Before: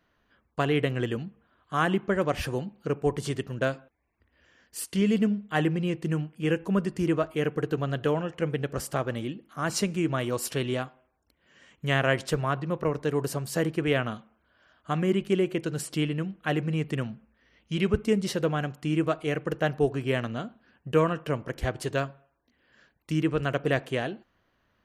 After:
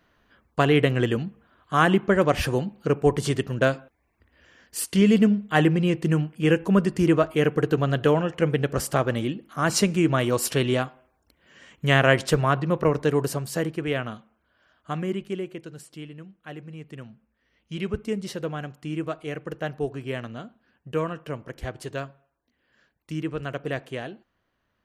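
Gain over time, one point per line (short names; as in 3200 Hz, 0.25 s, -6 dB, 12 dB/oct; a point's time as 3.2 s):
13.02 s +6 dB
13.79 s -1.5 dB
14.92 s -1.5 dB
15.92 s -12 dB
16.77 s -12 dB
17.72 s -4 dB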